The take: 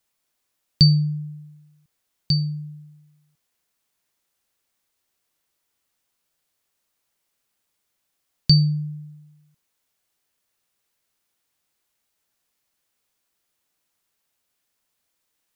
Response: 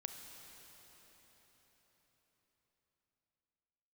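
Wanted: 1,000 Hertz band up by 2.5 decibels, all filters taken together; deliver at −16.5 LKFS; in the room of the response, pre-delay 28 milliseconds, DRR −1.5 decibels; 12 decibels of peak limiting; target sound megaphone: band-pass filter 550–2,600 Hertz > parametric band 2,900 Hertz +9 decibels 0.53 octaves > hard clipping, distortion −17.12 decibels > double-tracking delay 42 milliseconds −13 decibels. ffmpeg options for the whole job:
-filter_complex "[0:a]equalizer=frequency=1000:width_type=o:gain=4,alimiter=limit=-14dB:level=0:latency=1,asplit=2[link_01][link_02];[1:a]atrim=start_sample=2205,adelay=28[link_03];[link_02][link_03]afir=irnorm=-1:irlink=0,volume=4dB[link_04];[link_01][link_04]amix=inputs=2:normalize=0,highpass=550,lowpass=2600,equalizer=frequency=2900:width_type=o:width=0.53:gain=9,asoftclip=type=hard:threshold=-33dB,asplit=2[link_05][link_06];[link_06]adelay=42,volume=-13dB[link_07];[link_05][link_07]amix=inputs=2:normalize=0,volume=27dB"

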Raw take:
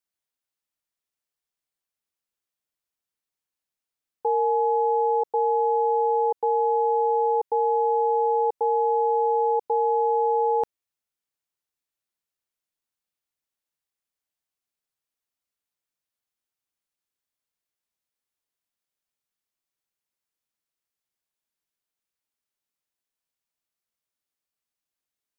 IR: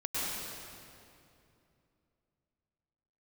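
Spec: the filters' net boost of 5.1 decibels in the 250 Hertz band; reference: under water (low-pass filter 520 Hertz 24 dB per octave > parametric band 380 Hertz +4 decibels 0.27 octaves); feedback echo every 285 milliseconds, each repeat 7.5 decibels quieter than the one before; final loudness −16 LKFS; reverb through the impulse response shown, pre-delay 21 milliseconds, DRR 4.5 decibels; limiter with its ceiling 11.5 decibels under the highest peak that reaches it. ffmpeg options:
-filter_complex "[0:a]equalizer=frequency=250:width_type=o:gain=8.5,alimiter=level_in=2dB:limit=-24dB:level=0:latency=1,volume=-2dB,aecho=1:1:285|570|855|1140|1425:0.422|0.177|0.0744|0.0312|0.0131,asplit=2[link_01][link_02];[1:a]atrim=start_sample=2205,adelay=21[link_03];[link_02][link_03]afir=irnorm=-1:irlink=0,volume=-11.5dB[link_04];[link_01][link_04]amix=inputs=2:normalize=0,lowpass=frequency=520:width=0.5412,lowpass=frequency=520:width=1.3066,equalizer=frequency=380:width_type=o:width=0.27:gain=4,volume=18.5dB"

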